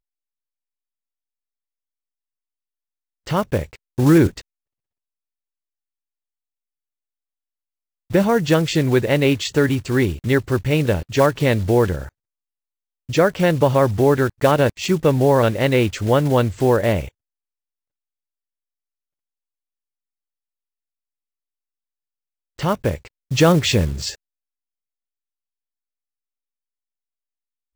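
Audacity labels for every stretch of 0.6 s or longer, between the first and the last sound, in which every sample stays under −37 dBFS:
4.410000	8.100000	silence
12.090000	13.090000	silence
17.080000	22.590000	silence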